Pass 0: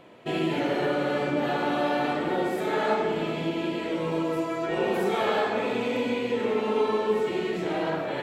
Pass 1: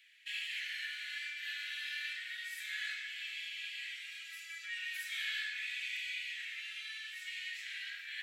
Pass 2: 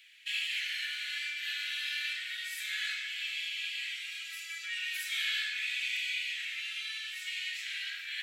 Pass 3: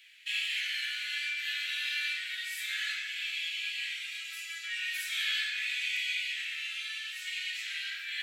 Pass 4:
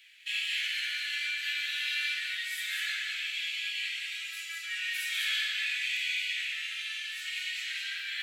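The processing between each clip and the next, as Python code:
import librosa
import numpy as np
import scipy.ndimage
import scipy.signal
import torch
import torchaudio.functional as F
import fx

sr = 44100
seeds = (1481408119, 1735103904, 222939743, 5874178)

y1 = scipy.signal.sosfilt(scipy.signal.butter(12, 1700.0, 'highpass', fs=sr, output='sos'), x)
y1 = F.gain(torch.from_numpy(y1), -2.5).numpy()
y2 = fx.peak_eq(y1, sr, hz=1800.0, db=-6.0, octaves=0.47)
y2 = F.gain(torch.from_numpy(y2), 7.5).numpy()
y3 = fx.room_shoebox(y2, sr, seeds[0], volume_m3=31.0, walls='mixed', distance_m=0.32)
y4 = y3 + 10.0 ** (-4.0 / 20.0) * np.pad(y3, (int(200 * sr / 1000.0), 0))[:len(y3)]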